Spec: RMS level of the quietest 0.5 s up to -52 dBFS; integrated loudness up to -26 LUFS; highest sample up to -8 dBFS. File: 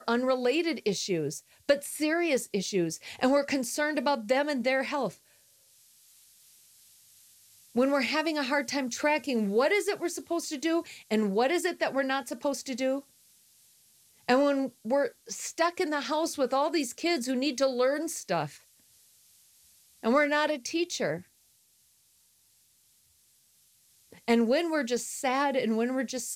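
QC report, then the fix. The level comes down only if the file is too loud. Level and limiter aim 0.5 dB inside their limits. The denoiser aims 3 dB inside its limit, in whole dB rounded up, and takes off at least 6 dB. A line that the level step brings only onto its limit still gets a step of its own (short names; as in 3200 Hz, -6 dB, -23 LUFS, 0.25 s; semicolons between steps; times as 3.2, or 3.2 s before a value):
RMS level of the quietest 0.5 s -66 dBFS: OK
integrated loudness -28.5 LUFS: OK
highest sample -10.5 dBFS: OK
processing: none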